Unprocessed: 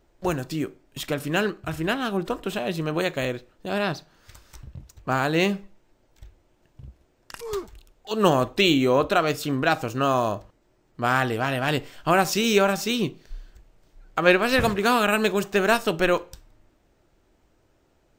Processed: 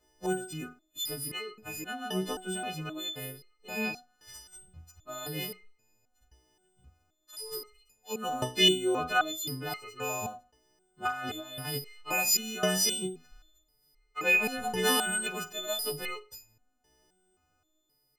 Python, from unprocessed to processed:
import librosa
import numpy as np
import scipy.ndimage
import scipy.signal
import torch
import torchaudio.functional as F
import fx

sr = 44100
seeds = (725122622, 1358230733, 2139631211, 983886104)

y = fx.freq_snap(x, sr, grid_st=3)
y = fx.over_compress(y, sr, threshold_db=-26.0, ratio=-1.0, at=(11.07, 11.65))
y = fx.resonator_held(y, sr, hz=3.8, low_hz=63.0, high_hz=420.0)